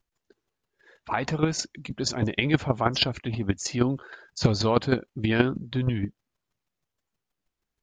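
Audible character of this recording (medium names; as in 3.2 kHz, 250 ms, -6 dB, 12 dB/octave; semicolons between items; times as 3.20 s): chopped level 6.3 Hz, depth 60%, duty 10%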